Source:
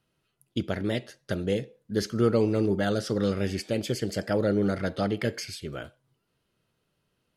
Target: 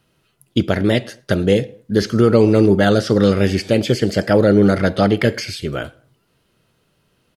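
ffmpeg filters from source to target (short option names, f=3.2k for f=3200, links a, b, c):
-filter_complex "[0:a]asplit=2[a][b];[b]adelay=107,lowpass=f=2k:p=1,volume=-23.5dB,asplit=2[c][d];[d]adelay=107,lowpass=f=2k:p=1,volume=0.36[e];[c][e]amix=inputs=2:normalize=0[f];[a][f]amix=inputs=2:normalize=0,acrossover=split=4900[g][h];[h]acompressor=threshold=-47dB:ratio=4:attack=1:release=60[i];[g][i]amix=inputs=2:normalize=0,alimiter=level_in=13.5dB:limit=-1dB:release=50:level=0:latency=1,volume=-1dB"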